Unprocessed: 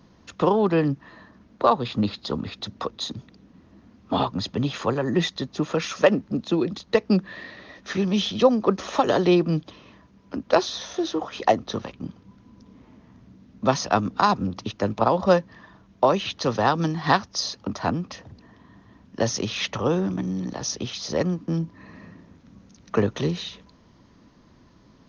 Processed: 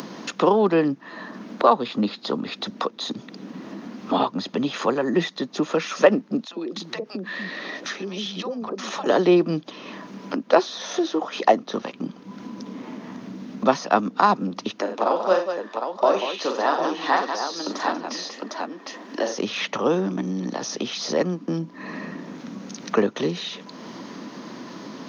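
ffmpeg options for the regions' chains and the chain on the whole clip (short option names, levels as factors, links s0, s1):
-filter_complex "[0:a]asettb=1/sr,asplit=3[s0][s1][s2];[s0]atrim=end=6.454[s3];[s1]atrim=start=6.45:end=9.06,asetpts=PTS-STARTPTS,afade=t=in:d=0.004:c=qsin,afade=t=out:st=2.606:d=0.004:c=qsin,acompressor=threshold=0.01:ratio=2.5:attack=3.2:release=140:knee=1:detection=peak,acrossover=split=180|670[s4][s5][s6];[s5]adelay=50[s7];[s4]adelay=290[s8];[s8][s7][s6]amix=inputs=3:normalize=0,atrim=end_sample=115101[s9];[s2]atrim=start=9.056[s10];[s3][s9]acrossfade=d=0.004:c1=hsin:c2=qsin[s11];[s11][s10]acrossfade=d=0.004:c1=qsin:c2=hsin,asettb=1/sr,asplit=3[s12][s13][s14];[s12]atrim=end=14.814[s15];[s13]atrim=start=14.81:end=19.38,asetpts=PTS-STARTPTS,afade=t=in:d=0.004:c=qsin,afade=t=out:st=4.566:d=0.004:c=qsin,highpass=f=270:w=0.5412,highpass=f=270:w=1.3066,aecho=1:1:41|85|189|755:0.531|0.266|0.376|0.447,atrim=end_sample=201537,flanger=delay=3:depth=8.2:regen=56:speed=1.6:shape=sinusoidal[s16];[s14]atrim=start=19.376[s17];[s15][s16]acrossfade=d=0.004:c1=hsin:c2=qsin[s18];[s18][s17]acrossfade=d=0.004:c1=qsin:c2=hsin,acrossover=split=2600[s19][s20];[s20]acompressor=threshold=0.0158:ratio=4:attack=1:release=60[s21];[s19][s21]amix=inputs=2:normalize=0,highpass=f=200:w=0.5412,highpass=f=200:w=1.3066,acompressor=mode=upward:threshold=0.0631:ratio=2.5,volume=1.33"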